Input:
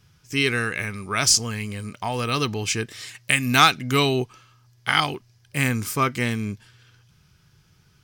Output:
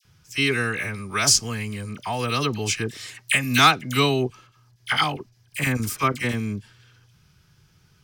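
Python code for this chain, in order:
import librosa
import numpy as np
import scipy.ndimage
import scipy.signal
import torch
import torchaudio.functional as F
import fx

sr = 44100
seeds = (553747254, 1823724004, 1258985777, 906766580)

y = fx.chopper(x, sr, hz=fx.line((4.21, 3.3), (6.33, 11.0)), depth_pct=65, duty_pct=80, at=(4.21, 6.33), fade=0.02)
y = fx.dispersion(y, sr, late='lows', ms=50.0, hz=1400.0)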